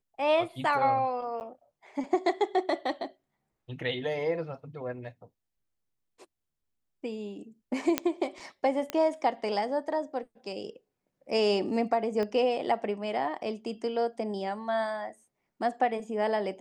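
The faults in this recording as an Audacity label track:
1.400000	1.410000	gap 9.7 ms
7.980000	7.980000	pop -9 dBFS
8.900000	8.900000	pop -16 dBFS
12.230000	12.230000	pop -21 dBFS

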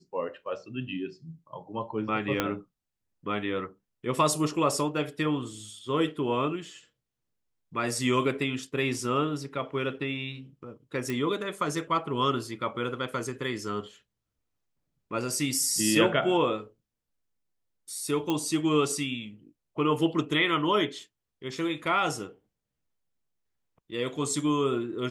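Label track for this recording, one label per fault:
2.400000	2.400000	pop -10 dBFS
11.100000	11.100000	pop
18.300000	18.300000	pop -15 dBFS

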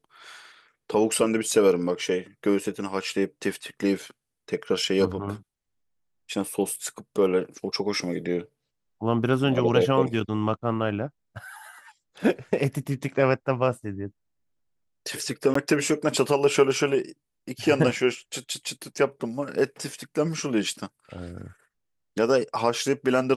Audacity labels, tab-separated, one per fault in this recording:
15.540000	15.550000	gap 14 ms

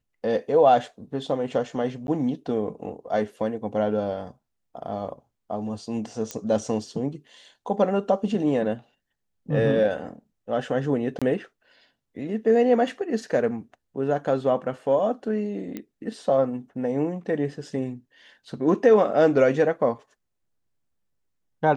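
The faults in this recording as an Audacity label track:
2.070000	2.080000	gap 11 ms
6.310000	6.310000	pop -16 dBFS
11.190000	11.220000	gap 26 ms
15.770000	15.770000	pop -19 dBFS

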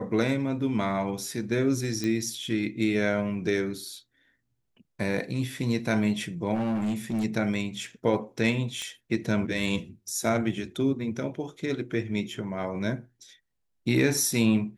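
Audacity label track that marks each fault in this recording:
2.040000	2.040000	pop -17 dBFS
6.540000	7.250000	clipped -24.5 dBFS
8.820000	8.820000	pop -21 dBFS

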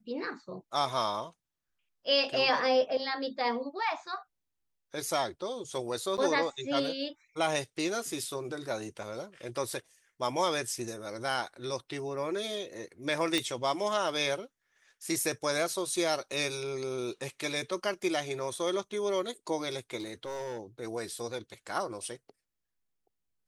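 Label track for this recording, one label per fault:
6.170000	6.180000	gap 8.8 ms
13.380000	13.380000	pop -14 dBFS
19.970000	20.610000	clipped -33.5 dBFS

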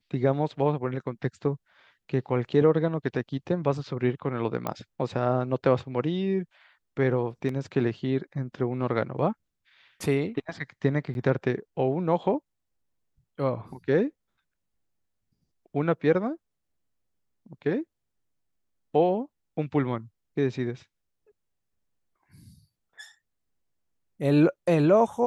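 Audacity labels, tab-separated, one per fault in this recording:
4.670000	4.670000	pop -15 dBFS
7.490000	7.490000	gap 2.8 ms
11.140000	11.150000	gap 11 ms

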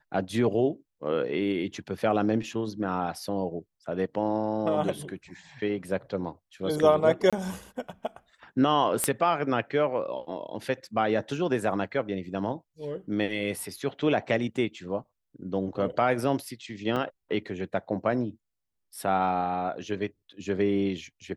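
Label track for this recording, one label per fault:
7.300000	7.330000	gap 26 ms
9.040000	9.040000	pop -9 dBFS
16.960000	16.970000	gap 5.6 ms

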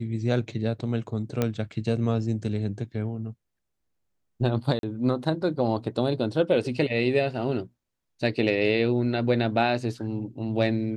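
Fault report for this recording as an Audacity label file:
1.420000	1.420000	pop -11 dBFS
4.790000	4.830000	gap 42 ms

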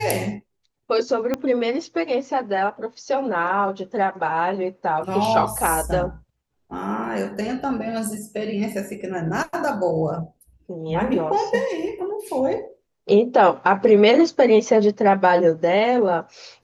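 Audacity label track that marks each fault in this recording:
1.340000	1.340000	pop -10 dBFS

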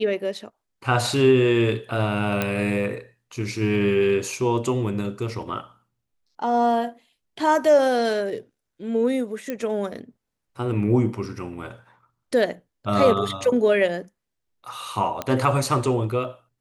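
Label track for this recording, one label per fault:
2.420000	2.420000	pop -9 dBFS
9.500000	9.500000	pop -15 dBFS
15.220000	15.220000	pop -12 dBFS

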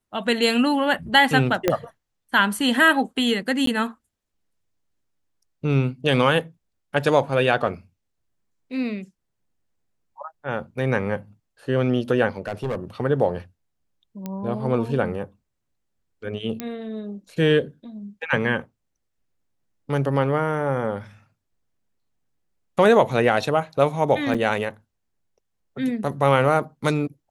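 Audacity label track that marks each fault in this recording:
1.680000	1.680000	pop -5 dBFS
3.660000	3.670000	gap 13 ms
12.470000	12.760000	clipped -22 dBFS
14.260000	14.260000	pop -17 dBFS
16.600000	16.600000	pop -13 dBFS
24.340000	24.350000	gap 5.9 ms

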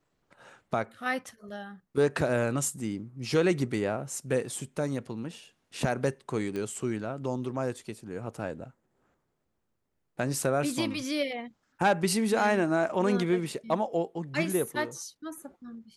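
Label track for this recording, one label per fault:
6.560000	6.560000	pop -23 dBFS

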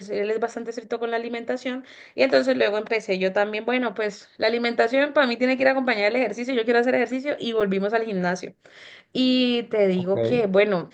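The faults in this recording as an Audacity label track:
7.600000	7.610000	gap 6.6 ms

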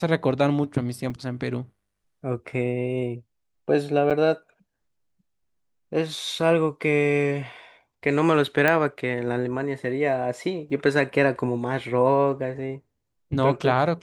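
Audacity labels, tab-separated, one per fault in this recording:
1.100000	1.100000	gap 4.5 ms
4.100000	4.110000	gap 6.9 ms
8.680000	8.680000	pop -8 dBFS
10.700000	10.700000	gap 3.9 ms

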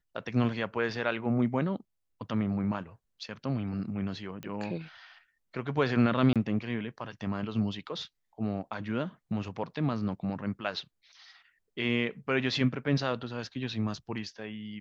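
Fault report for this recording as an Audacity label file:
4.430000	4.430000	pop -26 dBFS
6.330000	6.360000	gap 27 ms

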